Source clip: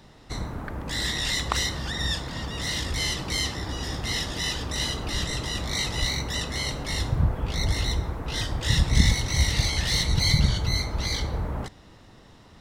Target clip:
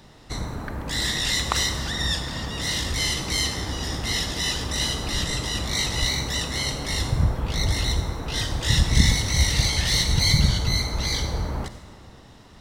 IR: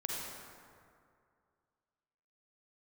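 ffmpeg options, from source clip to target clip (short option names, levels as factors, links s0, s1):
-filter_complex "[0:a]asplit=2[s0][s1];[1:a]atrim=start_sample=2205,highshelf=f=3100:g=11[s2];[s1][s2]afir=irnorm=-1:irlink=0,volume=0.251[s3];[s0][s3]amix=inputs=2:normalize=0"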